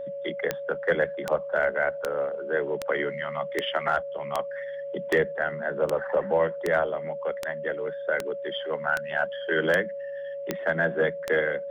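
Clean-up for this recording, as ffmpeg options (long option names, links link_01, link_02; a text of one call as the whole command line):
ffmpeg -i in.wav -af "adeclick=threshold=4,bandreject=frequency=560:width=30" out.wav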